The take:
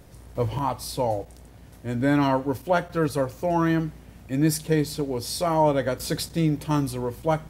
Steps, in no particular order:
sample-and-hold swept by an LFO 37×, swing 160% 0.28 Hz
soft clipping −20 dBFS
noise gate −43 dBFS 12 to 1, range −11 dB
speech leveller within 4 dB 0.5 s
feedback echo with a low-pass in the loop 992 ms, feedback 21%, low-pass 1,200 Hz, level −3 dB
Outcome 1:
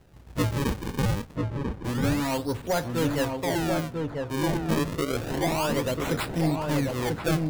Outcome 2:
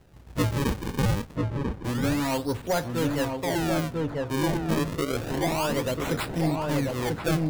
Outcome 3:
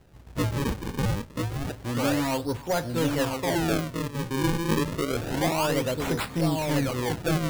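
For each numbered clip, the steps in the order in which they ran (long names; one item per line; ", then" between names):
sample-and-hold swept by an LFO, then noise gate, then soft clipping, then speech leveller, then feedback echo with a low-pass in the loop
sample-and-hold swept by an LFO, then noise gate, then soft clipping, then feedback echo with a low-pass in the loop, then speech leveller
noise gate, then speech leveller, then soft clipping, then feedback echo with a low-pass in the loop, then sample-and-hold swept by an LFO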